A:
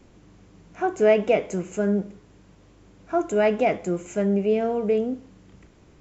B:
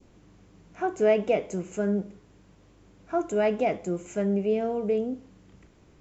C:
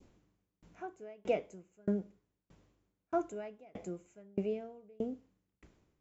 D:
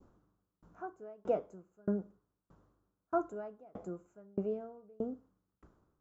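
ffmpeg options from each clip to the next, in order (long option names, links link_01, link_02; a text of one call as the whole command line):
ffmpeg -i in.wav -af "adynamicequalizer=threshold=0.01:dfrequency=1700:dqfactor=1:tfrequency=1700:tqfactor=1:attack=5:release=100:ratio=0.375:range=2.5:mode=cutabove:tftype=bell,volume=-3.5dB" out.wav
ffmpeg -i in.wav -af "aeval=exprs='val(0)*pow(10,-34*if(lt(mod(1.6*n/s,1),2*abs(1.6)/1000),1-mod(1.6*n/s,1)/(2*abs(1.6)/1000),(mod(1.6*n/s,1)-2*abs(1.6)/1000)/(1-2*abs(1.6)/1000))/20)':channel_layout=same,volume=-3.5dB" out.wav
ffmpeg -i in.wav -af "highshelf=frequency=1700:width_type=q:width=3:gain=-9,volume=-1dB" out.wav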